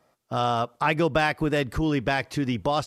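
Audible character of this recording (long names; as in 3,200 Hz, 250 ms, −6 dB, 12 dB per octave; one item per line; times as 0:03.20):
background noise floor −70 dBFS
spectral slope −4.5 dB per octave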